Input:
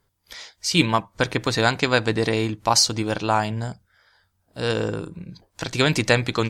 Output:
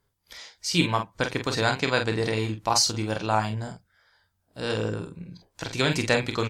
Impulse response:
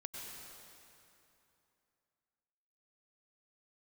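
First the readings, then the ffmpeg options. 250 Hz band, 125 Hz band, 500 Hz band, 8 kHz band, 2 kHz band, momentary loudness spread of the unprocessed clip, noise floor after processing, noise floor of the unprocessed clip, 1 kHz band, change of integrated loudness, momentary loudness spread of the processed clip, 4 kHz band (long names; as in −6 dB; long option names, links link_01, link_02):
−4.5 dB, −3.5 dB, −4.0 dB, −4.0 dB, −4.0 dB, 16 LU, −74 dBFS, −71 dBFS, −3.5 dB, −4.0 dB, 17 LU, −4.0 dB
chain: -af "aecho=1:1:29|46:0.282|0.447,volume=-5dB"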